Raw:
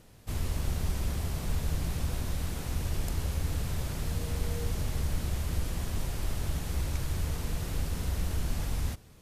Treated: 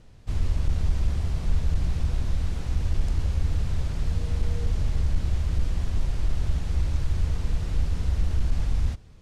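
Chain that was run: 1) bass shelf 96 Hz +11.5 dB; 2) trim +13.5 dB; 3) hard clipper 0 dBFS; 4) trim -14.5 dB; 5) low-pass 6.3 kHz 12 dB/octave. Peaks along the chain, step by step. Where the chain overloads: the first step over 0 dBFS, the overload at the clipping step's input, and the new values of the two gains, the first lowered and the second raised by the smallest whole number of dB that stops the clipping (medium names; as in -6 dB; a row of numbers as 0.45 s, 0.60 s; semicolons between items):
-9.0 dBFS, +4.5 dBFS, 0.0 dBFS, -14.5 dBFS, -14.5 dBFS; step 2, 4.5 dB; step 2 +8.5 dB, step 4 -9.5 dB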